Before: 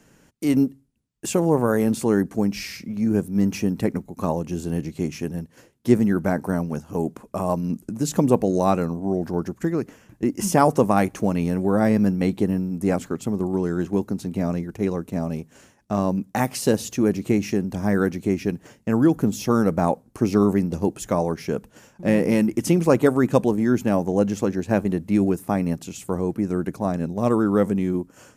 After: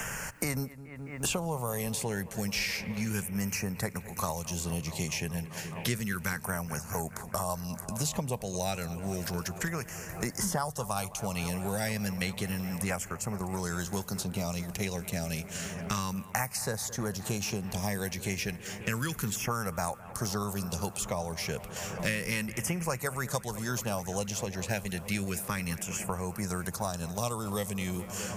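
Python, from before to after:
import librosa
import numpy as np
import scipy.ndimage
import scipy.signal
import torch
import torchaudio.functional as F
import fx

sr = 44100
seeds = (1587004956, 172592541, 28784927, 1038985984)

p1 = fx.tone_stack(x, sr, knobs='10-0-10')
p2 = fx.filter_lfo_notch(p1, sr, shape='saw_down', hz=0.31, low_hz=610.0, high_hz=4200.0, q=1.0)
p3 = p2 + fx.echo_bbd(p2, sr, ms=212, stages=4096, feedback_pct=82, wet_db=-20.0, dry=0)
p4 = fx.band_squash(p3, sr, depth_pct=100)
y = p4 * 10.0 ** (5.5 / 20.0)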